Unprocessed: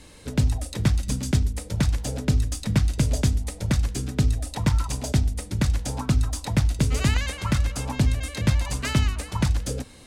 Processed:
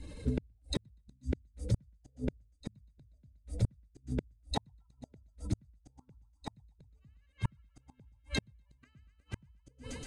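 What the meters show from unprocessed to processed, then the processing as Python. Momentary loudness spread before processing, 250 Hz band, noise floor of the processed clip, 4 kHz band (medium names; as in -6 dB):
4 LU, -14.5 dB, -70 dBFS, -14.0 dB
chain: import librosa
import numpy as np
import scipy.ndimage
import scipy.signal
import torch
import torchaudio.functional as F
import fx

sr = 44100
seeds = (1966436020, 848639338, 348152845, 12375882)

y = fx.spec_expand(x, sr, power=1.8)
y = fx.echo_thinned(y, sr, ms=121, feedback_pct=80, hz=560.0, wet_db=-7)
y = fx.gate_flip(y, sr, shuts_db=-21.0, range_db=-42)
y = y * 10.0 ** (2.5 / 20.0)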